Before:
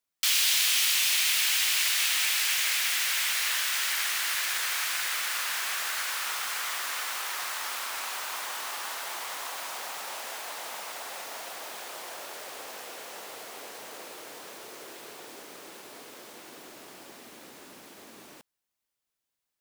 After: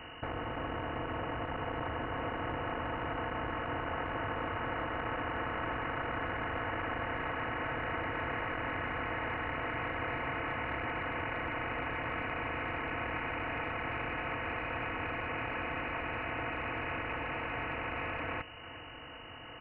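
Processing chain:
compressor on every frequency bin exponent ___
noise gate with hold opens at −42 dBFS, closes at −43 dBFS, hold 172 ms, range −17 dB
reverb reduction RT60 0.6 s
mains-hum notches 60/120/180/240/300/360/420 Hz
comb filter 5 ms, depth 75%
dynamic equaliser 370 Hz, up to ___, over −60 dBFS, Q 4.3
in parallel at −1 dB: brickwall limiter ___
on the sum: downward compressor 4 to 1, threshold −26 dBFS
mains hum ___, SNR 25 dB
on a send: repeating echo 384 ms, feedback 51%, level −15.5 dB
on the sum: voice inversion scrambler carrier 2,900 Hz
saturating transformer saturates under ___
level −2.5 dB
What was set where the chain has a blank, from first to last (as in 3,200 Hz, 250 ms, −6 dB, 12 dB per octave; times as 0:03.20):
0.4, +3 dB, −15.5 dBFS, 50 Hz, 380 Hz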